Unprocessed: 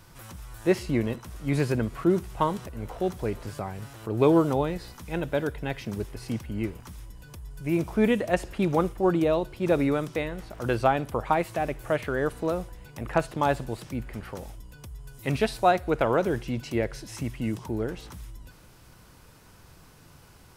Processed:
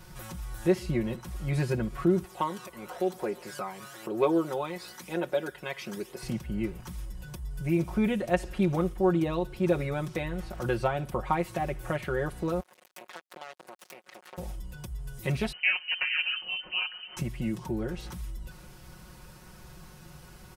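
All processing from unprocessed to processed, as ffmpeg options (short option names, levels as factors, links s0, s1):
-filter_complex "[0:a]asettb=1/sr,asplit=3[s0][s1][s2];[s0]atrim=end=2.244[s3];[s1]atrim=start=2.24:end=6.23,asetpts=PTS-STARTPTS,afade=t=in:d=0.004:c=qsin,afade=t=out:st=3.986:d=0.004:c=qsin,highpass=390,aphaser=in_gain=1:out_gain=1:delay=1:decay=0.44:speed=1:type=triangular[s4];[s2]atrim=start=6.226[s5];[s3][s4]acrossfade=d=0.004:c1=hsin:c2=qsin[s6];[s6][s5]acrossfade=d=0.004:c1=qsin:c2=hsin,asettb=1/sr,asplit=3[s7][s8][s9];[s7]atrim=end=12.604[s10];[s8]atrim=start=12.6:end=14.38,asetpts=PTS-STARTPTS,afade=t=in:d=0.004:c=qsin,afade=t=out:st=1.776:d=0.004:c=qsin,acompressor=threshold=0.0112:ratio=8:attack=3.2:release=140:knee=1:detection=peak,acrusher=bits=5:mix=0:aa=0.5,highpass=490[s11];[s9]atrim=start=14.376[s12];[s10][s11]acrossfade=d=0.004:c1=hsin:c2=qsin[s13];[s13][s12]acrossfade=d=0.004:c1=qsin:c2=hsin,asettb=1/sr,asplit=3[s14][s15][s16];[s14]atrim=end=15.524[s17];[s15]atrim=start=15.52:end=17.17,asetpts=PTS-STARTPTS,afade=t=in:d=0.004:c=qsin,afade=t=out:st=1.646:d=0.004:c=qsin,aeval=exprs='val(0)*sin(2*PI*150*n/s)':c=same,lowpass=f=2600:t=q:w=0.5098,lowpass=f=2600:t=q:w=0.6013,lowpass=f=2600:t=q:w=0.9,lowpass=f=2600:t=q:w=2.563,afreqshift=-3100[s18];[s16]atrim=start=17.166[s19];[s17][s18]acrossfade=d=0.004:c1=hsin:c2=qsin[s20];[s20][s19]acrossfade=d=0.004:c1=qsin:c2=hsin,equalizer=f=72:t=o:w=1.5:g=7,acompressor=threshold=0.0141:ratio=1.5,aecho=1:1:5.5:0.85"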